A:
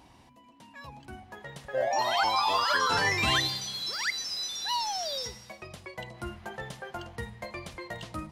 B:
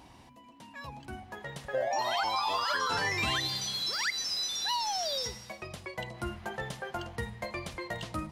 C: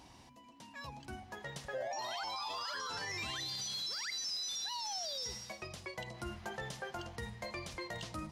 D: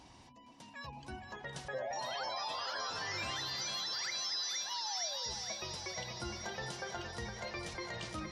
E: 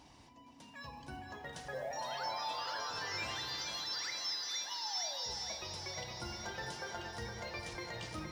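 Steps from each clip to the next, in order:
compressor 4:1, threshold -30 dBFS, peak gain reduction 7.5 dB; gain +2 dB
bell 5700 Hz +6.5 dB 1.1 oct; limiter -28 dBFS, peak gain reduction 11 dB; gain -4 dB
reverse delay 0.162 s, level -11.5 dB; spectral gate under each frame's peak -30 dB strong; thinning echo 0.464 s, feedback 72%, high-pass 210 Hz, level -7 dB
in parallel at -7 dB: short-mantissa float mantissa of 2-bit; on the sum: FDN reverb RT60 1.9 s, low-frequency decay 1.25×, high-frequency decay 0.5×, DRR 6 dB; gain -5.5 dB

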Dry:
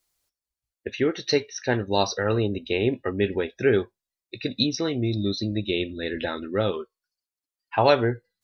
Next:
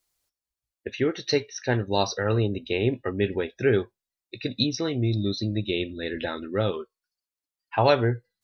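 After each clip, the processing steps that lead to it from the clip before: dynamic EQ 120 Hz, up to +5 dB, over -43 dBFS, Q 3.1; gain -1.5 dB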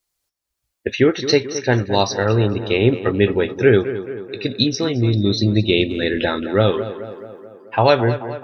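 AGC gain up to 15.5 dB; on a send: tape echo 0.217 s, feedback 66%, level -10.5 dB, low-pass 2200 Hz; on the sum: gain -1 dB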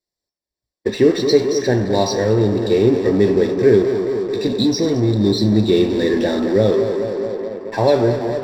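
in parallel at -7.5 dB: fuzz box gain 39 dB, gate -46 dBFS; on the sum: reverb RT60 0.75 s, pre-delay 3 ms, DRR 7.5 dB; gain -16 dB

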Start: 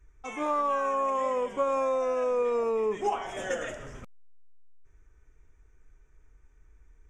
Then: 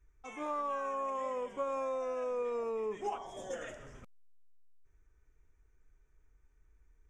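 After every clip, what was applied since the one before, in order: spectral gain 3.17–3.54, 1200–3100 Hz -14 dB; gain -8.5 dB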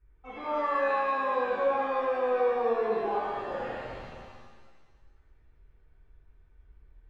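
air absorption 430 m; shimmer reverb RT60 1.6 s, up +7 st, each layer -8 dB, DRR -8 dB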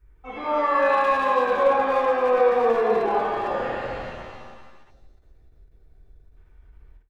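speakerphone echo 0.29 s, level -6 dB; spectral gain 4.9–6.37, 810–3400 Hz -9 dB; ending taper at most 190 dB/s; gain +7 dB

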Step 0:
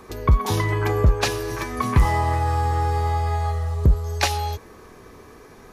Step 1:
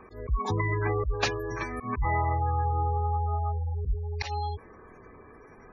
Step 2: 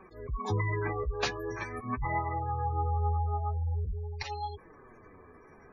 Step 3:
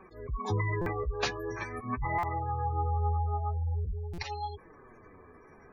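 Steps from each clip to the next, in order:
spectral gate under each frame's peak -20 dB strong; bell 2100 Hz +3 dB 1.9 oct; auto swell 0.111 s; gain -5.5 dB
flange 0.44 Hz, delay 5.1 ms, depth 9.9 ms, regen +27%
stuck buffer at 0.81/2.18/4.13, samples 256, times 8

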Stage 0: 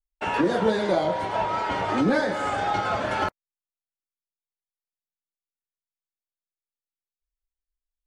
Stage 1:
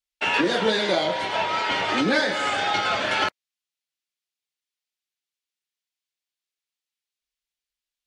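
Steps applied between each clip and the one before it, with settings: weighting filter D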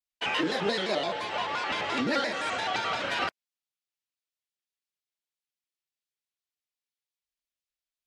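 shaped vibrato square 5.8 Hz, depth 160 cents; gain -6.5 dB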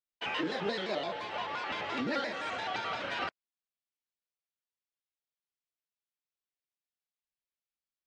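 air absorption 81 m; gain -5 dB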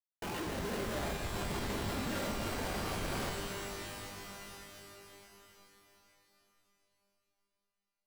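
vocal rider 2 s; Schmitt trigger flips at -32.5 dBFS; shimmer reverb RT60 3.5 s, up +12 st, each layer -2 dB, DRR 3 dB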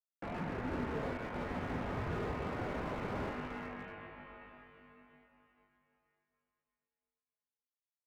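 power-law curve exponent 1.4; mistuned SSB -150 Hz 220–2600 Hz; slew limiter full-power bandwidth 6.5 Hz; gain +5 dB

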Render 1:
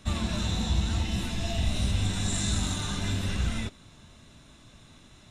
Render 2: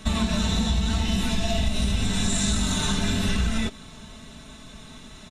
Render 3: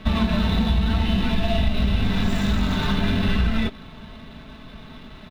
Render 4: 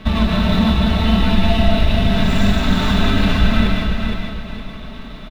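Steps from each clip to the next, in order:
comb 4.6 ms, depth 55%; compressor, threshold -28 dBFS, peak gain reduction 9 dB; gain +8.5 dB
median filter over 9 samples; resonant high shelf 5800 Hz -10 dB, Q 1.5; gain +3.5 dB
feedback echo 0.464 s, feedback 33%, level -5 dB; reverb RT60 0.60 s, pre-delay 0.105 s, DRR 2 dB; gain +3.5 dB

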